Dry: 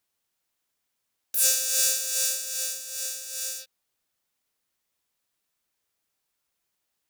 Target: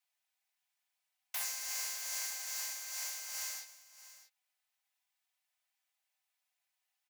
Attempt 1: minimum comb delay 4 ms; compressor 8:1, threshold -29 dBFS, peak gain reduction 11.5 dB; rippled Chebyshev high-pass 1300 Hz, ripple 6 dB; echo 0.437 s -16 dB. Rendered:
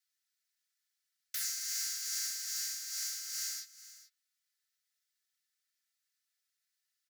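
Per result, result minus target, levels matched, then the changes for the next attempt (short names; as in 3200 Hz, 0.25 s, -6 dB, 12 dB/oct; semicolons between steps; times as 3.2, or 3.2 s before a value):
1000 Hz band -11.5 dB; echo 0.2 s early
change: rippled Chebyshev high-pass 580 Hz, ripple 6 dB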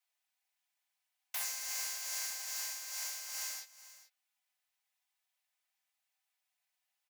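echo 0.2 s early
change: echo 0.637 s -16 dB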